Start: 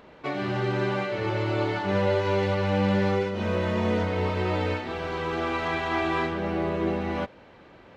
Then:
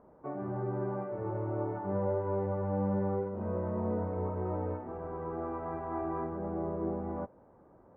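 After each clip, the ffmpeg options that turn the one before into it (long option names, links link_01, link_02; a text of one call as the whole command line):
ffmpeg -i in.wav -af "lowpass=frequency=1100:width=0.5412,lowpass=frequency=1100:width=1.3066,volume=-7.5dB" out.wav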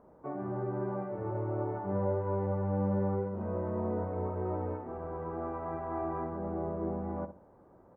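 ffmpeg -i in.wav -filter_complex "[0:a]asplit=2[link_01][link_02];[link_02]adelay=62,lowpass=frequency=1000:poles=1,volume=-10dB,asplit=2[link_03][link_04];[link_04]adelay=62,lowpass=frequency=1000:poles=1,volume=0.35,asplit=2[link_05][link_06];[link_06]adelay=62,lowpass=frequency=1000:poles=1,volume=0.35,asplit=2[link_07][link_08];[link_08]adelay=62,lowpass=frequency=1000:poles=1,volume=0.35[link_09];[link_01][link_03][link_05][link_07][link_09]amix=inputs=5:normalize=0" out.wav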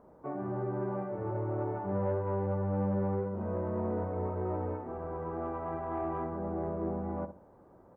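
ffmpeg -i in.wav -af "asoftclip=type=tanh:threshold=-23.5dB,volume=1dB" out.wav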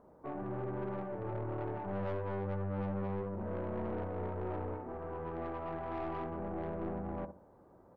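ffmpeg -i in.wav -af "aeval=exprs='(tanh(39.8*val(0)+0.45)-tanh(0.45))/39.8':channel_layout=same,volume=-1dB" out.wav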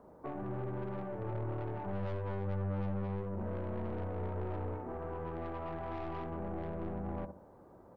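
ffmpeg -i in.wav -filter_complex "[0:a]acrossover=split=150|3000[link_01][link_02][link_03];[link_02]acompressor=threshold=-42dB:ratio=6[link_04];[link_01][link_04][link_03]amix=inputs=3:normalize=0,volume=3.5dB" out.wav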